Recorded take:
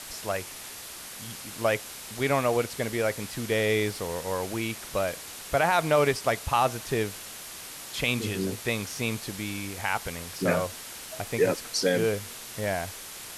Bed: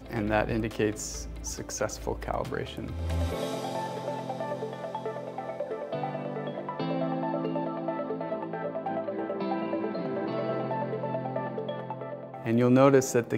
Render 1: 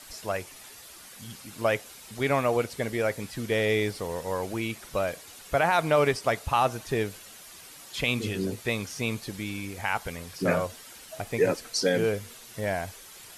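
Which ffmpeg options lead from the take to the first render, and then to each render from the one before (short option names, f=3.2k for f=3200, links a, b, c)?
-af "afftdn=nr=9:nf=-42"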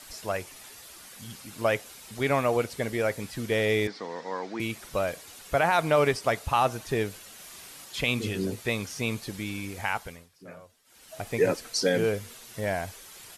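-filter_complex "[0:a]asettb=1/sr,asplit=3[a][b][c];[a]atrim=end=3.874[d];[b]atrim=start=3.87:end=4.6,asetpts=PTS-STARTPTS,afade=t=in:d=0.004:c=qsin,afade=t=out:st=0.726:d=0.004:c=qsin,highpass=f=210:w=0.5412,highpass=f=210:w=1.3066,equalizer=f=400:t=q:w=4:g=-4,equalizer=f=570:t=q:w=4:g=-7,equalizer=f=1.9k:t=q:w=4:g=4,equalizer=f=2.8k:t=q:w=4:g=-7,lowpass=f=5.3k:w=0.5412,lowpass=f=5.3k:w=1.3066[e];[c]atrim=start=4.596[f];[d][e]acrossfade=d=0.004:c1=hsin:c2=qsin[g];[g][f]acrossfade=d=0.004:c1=qsin:c2=hsin,asplit=3[h][i][j];[h]afade=t=out:st=7.38:d=0.02[k];[i]asplit=2[l][m];[m]adelay=41,volume=-4dB[n];[l][n]amix=inputs=2:normalize=0,afade=t=in:st=7.38:d=0.02,afade=t=out:st=7.84:d=0.02[o];[j]afade=t=in:st=7.84:d=0.02[p];[k][o][p]amix=inputs=3:normalize=0,asplit=3[q][r][s];[q]atrim=end=10.29,asetpts=PTS-STARTPTS,afade=t=out:st=9.86:d=0.43:silence=0.0891251[t];[r]atrim=start=10.29:end=10.84,asetpts=PTS-STARTPTS,volume=-21dB[u];[s]atrim=start=10.84,asetpts=PTS-STARTPTS,afade=t=in:d=0.43:silence=0.0891251[v];[t][u][v]concat=n=3:v=0:a=1"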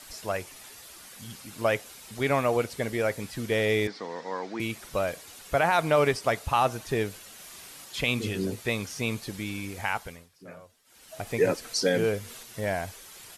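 -filter_complex "[0:a]asettb=1/sr,asplit=3[a][b][c];[a]atrim=end=11.204[d];[b]atrim=start=11.2:end=12.43,asetpts=PTS-STARTPTS,afade=t=in:d=0.004:c=qsin,afade=t=out:st=1.226:d=0.004:c=qsin,acompressor=mode=upward:threshold=-37dB:ratio=2.5:attack=3.2:release=140:knee=2.83:detection=peak[e];[c]atrim=start=12.426[f];[d][e]acrossfade=d=0.004:c1=hsin:c2=qsin[g];[g][f]acrossfade=d=0.004:c1=qsin:c2=hsin"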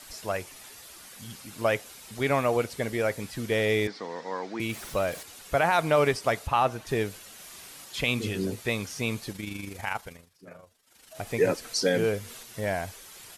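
-filter_complex "[0:a]asettb=1/sr,asplit=3[a][b][c];[a]atrim=end=4.694[d];[b]atrim=start=4.69:end=5.23,asetpts=PTS-STARTPTS,afade=t=in:d=0.004:c=qsin,afade=t=out:st=0.536:d=0.004:c=qsin,aeval=exprs='val(0)+0.5*0.00841*sgn(val(0))':c=same[e];[c]atrim=start=5.226[f];[d][e]acrossfade=d=0.004:c1=hsin:c2=qsin[g];[g][f]acrossfade=d=0.004:c1=qsin:c2=hsin,asettb=1/sr,asplit=3[h][i][j];[h]atrim=end=6.474[k];[i]atrim=start=6.47:end=6.87,asetpts=PTS-STARTPTS,afade=t=in:d=0.004:c=qsin,afade=t=out:st=0.396:d=0.004:c=qsin,bass=f=250:g=-1,treble=f=4k:g=-7[l];[j]atrim=start=6.866[m];[k][l]acrossfade=d=0.004:c1=hsin:c2=qsin[n];[n][m]acrossfade=d=0.004:c1=qsin:c2=hsin,asettb=1/sr,asplit=3[o][p][q];[o]atrim=end=9.324[r];[p]atrim=start=9.32:end=11.16,asetpts=PTS-STARTPTS,afade=t=in:d=0.004:c=qsin,afade=t=out:st=1.836:d=0.004:c=qsin,tremolo=f=25:d=0.519[s];[q]atrim=start=11.156[t];[r][s]acrossfade=d=0.004:c1=hsin:c2=qsin[u];[u][t]acrossfade=d=0.004:c1=qsin:c2=hsin"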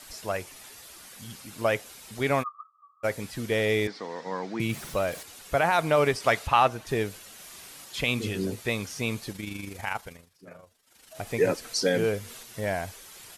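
-filter_complex "[0:a]asplit=3[a][b][c];[a]afade=t=out:st=2.42:d=0.02[d];[b]asuperpass=centerf=1200:order=20:qfactor=6.1,afade=t=in:st=2.42:d=0.02,afade=t=out:st=3.03:d=0.02[e];[c]afade=t=in:st=3.03:d=0.02[f];[d][e][f]amix=inputs=3:normalize=0,asettb=1/sr,asplit=3[g][h][i];[g]atrim=end=4.264[j];[h]atrim=start=4.26:end=4.91,asetpts=PTS-STARTPTS,afade=t=in:d=0.004:c=qsin,afade=t=out:st=0.646:d=0.004:c=qsin,equalizer=f=150:t=o:w=0.77:g=12[k];[i]atrim=start=4.906[l];[j][k]acrossfade=d=0.004:c1=hsin:c2=qsin[m];[m][l]acrossfade=d=0.004:c1=qsin:c2=hsin,asettb=1/sr,asplit=3[n][o][p];[n]atrim=end=6.204[q];[o]atrim=start=6.2:end=6.68,asetpts=PTS-STARTPTS,afade=t=in:d=0.004:c=qsin,afade=t=out:st=0.476:d=0.004:c=qsin,equalizer=f=2.5k:w=0.41:g=6[r];[p]atrim=start=6.676[s];[q][r]acrossfade=d=0.004:c1=hsin:c2=qsin[t];[t][s]acrossfade=d=0.004:c1=qsin:c2=hsin"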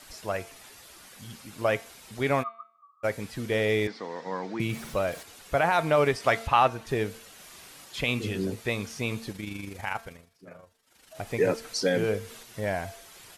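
-af "highshelf=f=4.8k:g=-5,bandreject=f=226.7:t=h:w=4,bandreject=f=453.4:t=h:w=4,bandreject=f=680.1:t=h:w=4,bandreject=f=906.8:t=h:w=4,bandreject=f=1.1335k:t=h:w=4,bandreject=f=1.3602k:t=h:w=4,bandreject=f=1.5869k:t=h:w=4,bandreject=f=1.8136k:t=h:w=4,bandreject=f=2.0403k:t=h:w=4,bandreject=f=2.267k:t=h:w=4,bandreject=f=2.4937k:t=h:w=4,bandreject=f=2.7204k:t=h:w=4,bandreject=f=2.9471k:t=h:w=4,bandreject=f=3.1738k:t=h:w=4,bandreject=f=3.4005k:t=h:w=4,bandreject=f=3.6272k:t=h:w=4,bandreject=f=3.8539k:t=h:w=4,bandreject=f=4.0806k:t=h:w=4,bandreject=f=4.3073k:t=h:w=4"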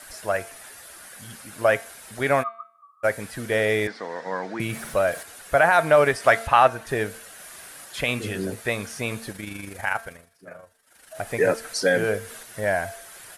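-af "equalizer=f=630:t=o:w=0.67:g=7,equalizer=f=1.6k:t=o:w=0.67:g=10,equalizer=f=10k:t=o:w=0.67:g=11"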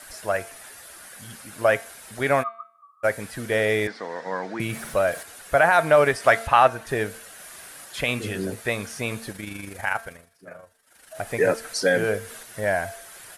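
-af anull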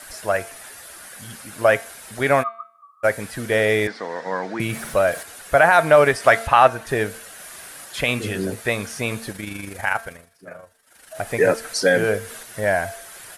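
-af "volume=3.5dB,alimiter=limit=-1dB:level=0:latency=1"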